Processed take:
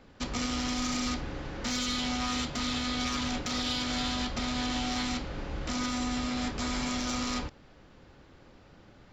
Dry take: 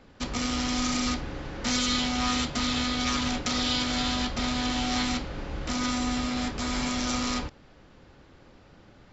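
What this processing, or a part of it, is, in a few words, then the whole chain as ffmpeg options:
soft clipper into limiter: -af "asoftclip=type=tanh:threshold=-16.5dB,alimiter=limit=-21.5dB:level=0:latency=1:release=134,volume=-1.5dB"

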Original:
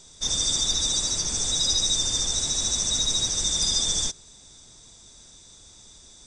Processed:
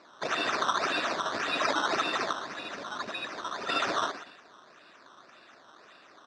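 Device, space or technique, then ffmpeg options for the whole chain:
circuit-bent sampling toy: -filter_complex "[0:a]asettb=1/sr,asplit=3[link_01][link_02][link_03];[link_01]atrim=end=2.334[link_04];[link_02]atrim=start=2.33:end=3.69,asetpts=PTS-STARTPTS,afade=type=in:duration=0.004:curve=qsin,afade=type=out:start_time=1.356:duration=0.004:curve=qsin,bass=frequency=250:gain=-2,treble=frequency=4000:gain=-13[link_05];[link_03]atrim=start=3.686[link_06];[link_04][link_05]acrossfade=duration=0.004:curve1=hsin:curve2=qsin[link_07];[link_07][link_06]acrossfade=duration=0.004:curve1=qsin:curve2=hsin,aecho=1:1:120|240|360:0.266|0.0851|0.0272,acrusher=samples=13:mix=1:aa=0.000001:lfo=1:lforange=13:lforate=1.8,highpass=410,equalizer=frequency=480:width_type=q:width=4:gain=-7,equalizer=frequency=840:width_type=q:width=4:gain=-9,equalizer=frequency=2100:width_type=q:width=4:gain=-7,equalizer=frequency=3100:width_type=q:width=4:gain=-6,lowpass=frequency=5200:width=0.5412,lowpass=frequency=5200:width=1.3066"

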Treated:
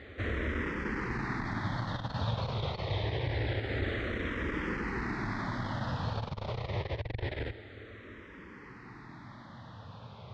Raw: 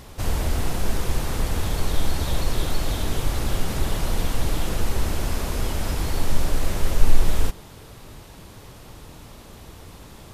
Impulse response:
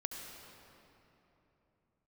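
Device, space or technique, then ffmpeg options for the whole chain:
barber-pole phaser into a guitar amplifier: -filter_complex "[0:a]asplit=2[link_01][link_02];[link_02]afreqshift=-0.26[link_03];[link_01][link_03]amix=inputs=2:normalize=1,asoftclip=type=tanh:threshold=-16.5dB,highpass=99,equalizer=frequency=110:width_type=q:width=4:gain=7,equalizer=frequency=160:width_type=q:width=4:gain=-4,equalizer=frequency=720:width_type=q:width=4:gain=-3,equalizer=frequency=1900:width_type=q:width=4:gain=8,equalizer=frequency=2800:width_type=q:width=4:gain=-6,lowpass=frequency=3600:width=0.5412,lowpass=frequency=3600:width=1.3066"

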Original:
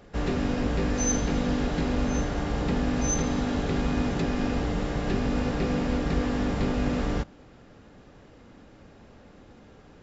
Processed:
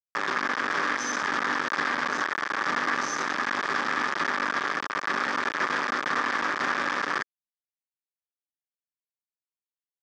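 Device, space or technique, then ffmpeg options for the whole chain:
hand-held game console: -af "acrusher=bits=3:mix=0:aa=0.000001,highpass=470,equalizer=frequency=480:width_type=q:width=4:gain=-7,equalizer=frequency=690:width_type=q:width=4:gain=-8,equalizer=frequency=1200:width_type=q:width=4:gain=8,equalizer=frequency=1700:width_type=q:width=4:gain=9,equalizer=frequency=2800:width_type=q:width=4:gain=-7,equalizer=frequency=4100:width_type=q:width=4:gain=-7,lowpass=frequency=5100:width=0.5412,lowpass=frequency=5100:width=1.3066"

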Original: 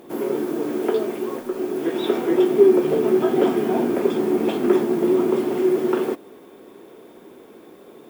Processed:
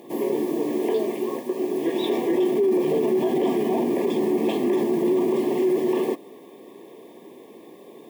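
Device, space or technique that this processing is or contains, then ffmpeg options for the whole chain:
PA system with an anti-feedback notch: -af "highpass=120,asuperstop=centerf=1400:order=20:qfactor=3,alimiter=limit=-14.5dB:level=0:latency=1:release=20"

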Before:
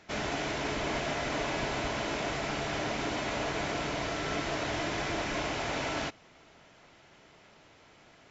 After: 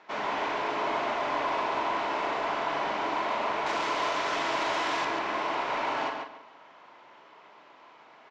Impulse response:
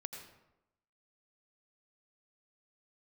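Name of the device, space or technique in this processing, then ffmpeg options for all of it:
intercom: -filter_complex "[0:a]highpass=320,lowpass=3600,equalizer=frequency=1000:width_type=o:width=0.55:gain=11.5,asoftclip=type=tanh:threshold=-24dB,asplit=2[link_01][link_02];[link_02]adelay=42,volume=-7dB[link_03];[link_01][link_03]amix=inputs=2:normalize=0,asettb=1/sr,asplit=3[link_04][link_05][link_06];[link_04]atrim=end=3.664[link_07];[link_05]atrim=start=3.66:end=5.05,asetpts=PTS-STARTPTS,afade=type=in:duration=0.004:curve=qsin,afade=type=out:start_time=1.386:duration=0.004:curve=qsin,aemphasis=mode=production:type=75kf[link_08];[link_06]atrim=start=5.046[link_09];[link_07][link_08]acrossfade=duration=0.004:curve1=hsin:curve2=qsin[link_10];[link_10][link_09]acrossfade=duration=0.004:curve1=qsin:curve2=hsin,asplit=2[link_11][link_12];[link_12]adelay=140,lowpass=frequency=4700:poles=1,volume=-4dB,asplit=2[link_13][link_14];[link_14]adelay=140,lowpass=frequency=4700:poles=1,volume=0.26,asplit=2[link_15][link_16];[link_16]adelay=140,lowpass=frequency=4700:poles=1,volume=0.26,asplit=2[link_17][link_18];[link_18]adelay=140,lowpass=frequency=4700:poles=1,volume=0.26[link_19];[link_11][link_13][link_15][link_17][link_19]amix=inputs=5:normalize=0"

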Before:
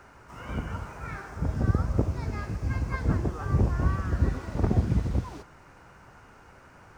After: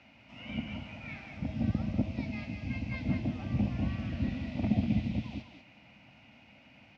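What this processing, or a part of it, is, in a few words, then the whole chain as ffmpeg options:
guitar cabinet: -af "highpass=93,equalizer=frequency=170:width_type=q:width=4:gain=-9,equalizer=frequency=390:width_type=q:width=4:gain=-10,equalizer=frequency=2000:width_type=q:width=4:gain=8,lowpass=frequency=4400:width=0.5412,lowpass=frequency=4400:width=1.3066,firequalizer=gain_entry='entry(100,0);entry(210,12);entry(430,-7);entry(630,3);entry(1100,-12);entry(1700,-11);entry(2500,12);entry(4300,6)':delay=0.05:min_phase=1,aecho=1:1:193:0.447,volume=-6dB"

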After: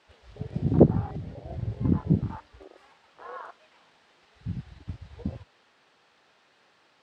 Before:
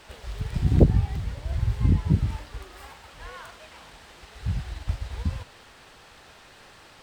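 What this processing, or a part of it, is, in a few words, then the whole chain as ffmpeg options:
over-cleaned archive recording: -af "highpass=180,lowpass=5700,afwtdn=0.0126,volume=4.5dB"

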